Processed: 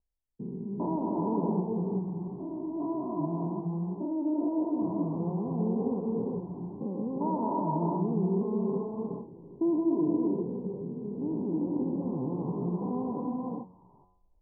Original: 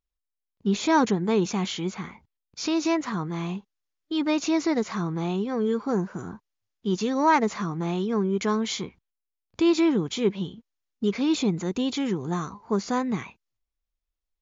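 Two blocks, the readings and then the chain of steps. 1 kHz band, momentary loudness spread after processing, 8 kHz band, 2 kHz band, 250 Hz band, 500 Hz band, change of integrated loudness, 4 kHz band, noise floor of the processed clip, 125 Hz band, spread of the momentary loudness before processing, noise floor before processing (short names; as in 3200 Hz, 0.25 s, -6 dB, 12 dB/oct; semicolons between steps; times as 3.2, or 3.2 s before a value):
-7.5 dB, 9 LU, n/a, under -40 dB, -3.5 dB, -5.0 dB, -5.5 dB, under -40 dB, -63 dBFS, -1.5 dB, 12 LU, -85 dBFS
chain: stepped spectrum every 0.4 s; non-linear reverb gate 0.44 s rising, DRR -0.5 dB; in parallel at -2.5 dB: compressor, threshold -35 dBFS, peak gain reduction 15 dB; on the sum: de-hum 91.64 Hz, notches 37; reverse; upward compressor, threshold -44 dBFS; reverse; Chebyshev low-pass 1000 Hz, order 6; mismatched tape noise reduction decoder only; gain -4.5 dB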